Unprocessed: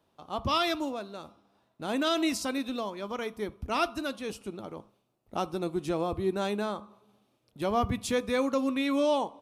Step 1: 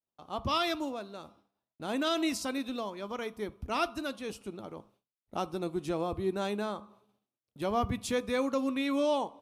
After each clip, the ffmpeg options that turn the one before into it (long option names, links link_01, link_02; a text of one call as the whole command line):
ffmpeg -i in.wav -af "agate=range=-33dB:threshold=-57dB:ratio=3:detection=peak,volume=-2.5dB" out.wav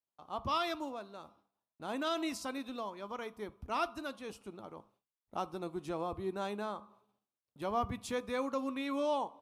ffmpeg -i in.wav -af "equalizer=frequency=1000:width_type=o:width=1.2:gain=6,volume=-7dB" out.wav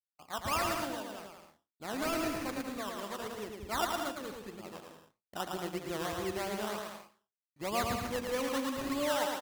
ffmpeg -i in.wav -af "acrusher=samples=16:mix=1:aa=0.000001:lfo=1:lforange=9.6:lforate=3.2,agate=range=-33dB:threshold=-54dB:ratio=3:detection=peak,aecho=1:1:110|187|240.9|278.6|305:0.631|0.398|0.251|0.158|0.1" out.wav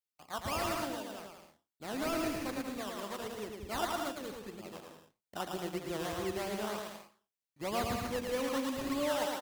ffmpeg -i in.wav -filter_complex "[0:a]acrossover=split=860|1200[link_01][link_02][link_03];[link_02]acrusher=samples=16:mix=1:aa=0.000001:lfo=1:lforange=16:lforate=2.2[link_04];[link_03]asoftclip=type=tanh:threshold=-34.5dB[link_05];[link_01][link_04][link_05]amix=inputs=3:normalize=0" out.wav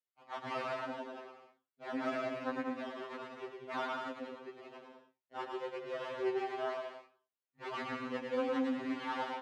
ffmpeg -i in.wav -af "aeval=exprs='0.0891*(cos(1*acos(clip(val(0)/0.0891,-1,1)))-cos(1*PI/2))+0.0158*(cos(4*acos(clip(val(0)/0.0891,-1,1)))-cos(4*PI/2))':channel_layout=same,highpass=230,lowpass=2400,afftfilt=real='re*2.45*eq(mod(b,6),0)':imag='im*2.45*eq(mod(b,6),0)':win_size=2048:overlap=0.75,volume=1dB" out.wav